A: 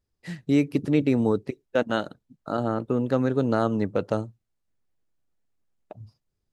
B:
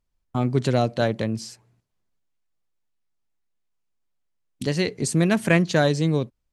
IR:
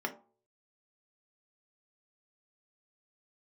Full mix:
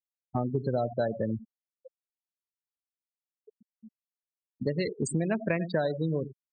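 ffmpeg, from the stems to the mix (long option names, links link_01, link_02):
-filter_complex "[0:a]asoftclip=type=hard:threshold=-25.5dB,adelay=100,volume=-17dB,asplit=2[link_01][link_02];[link_02]volume=-21dB[link_03];[1:a]volume=-2dB,asplit=4[link_04][link_05][link_06][link_07];[link_05]volume=-20.5dB[link_08];[link_06]volume=-13.5dB[link_09];[link_07]apad=whole_len=292260[link_10];[link_01][link_10]sidechaincompress=threshold=-33dB:ratio=8:attack=16:release=239[link_11];[2:a]atrim=start_sample=2205[link_12];[link_03][link_08]amix=inputs=2:normalize=0[link_13];[link_13][link_12]afir=irnorm=-1:irlink=0[link_14];[link_09]aecho=0:1:92:1[link_15];[link_11][link_04][link_14][link_15]amix=inputs=4:normalize=0,afftfilt=real='re*gte(hypot(re,im),0.0794)':imag='im*gte(hypot(re,im),0.0794)':win_size=1024:overlap=0.75,equalizer=frequency=640:width=2.1:gain=5.5,acompressor=threshold=-25dB:ratio=6"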